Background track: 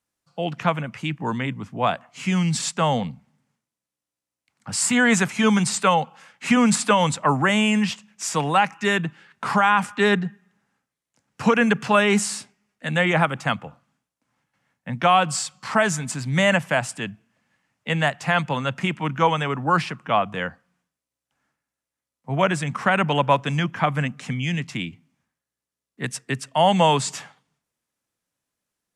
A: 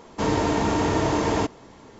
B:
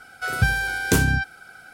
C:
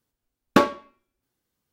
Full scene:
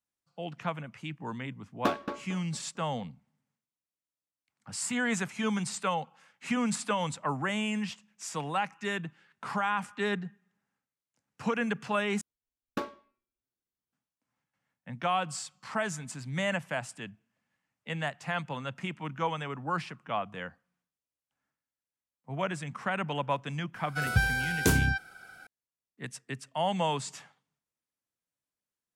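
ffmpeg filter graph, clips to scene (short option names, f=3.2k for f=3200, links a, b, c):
-filter_complex "[3:a]asplit=2[a][b];[0:a]volume=-12dB[c];[a]asplit=2[d][e];[e]adelay=225,lowpass=f=3.1k:p=1,volume=-7.5dB,asplit=2[f][g];[g]adelay=225,lowpass=f=3.1k:p=1,volume=0.3,asplit=2[h][i];[i]adelay=225,lowpass=f=3.1k:p=1,volume=0.3,asplit=2[j][k];[k]adelay=225,lowpass=f=3.1k:p=1,volume=0.3[l];[d][f][h][j][l]amix=inputs=5:normalize=0[m];[c]asplit=2[n][o];[n]atrim=end=12.214[p];[b]atrim=end=1.72,asetpts=PTS-STARTPTS,volume=-17dB[q];[o]atrim=start=13.926[r];[m]atrim=end=1.72,asetpts=PTS-STARTPTS,volume=-12dB,afade=t=in:d=0.004:c=hsin,afade=t=out:st=1.716:d=0.004:c=hsin,adelay=1290[s];[2:a]atrim=end=1.73,asetpts=PTS-STARTPTS,volume=-5.5dB,afade=t=in:d=0.004:c=hsin,afade=t=out:st=1.726:d=0.004:c=hsin,adelay=23740[t];[p][q]acrossfade=d=0.004:c1=hsin:c2=hsin[u];[u][r]acrossfade=d=0.004:c1=hsin:c2=hsin[v];[v][s][t]amix=inputs=3:normalize=0"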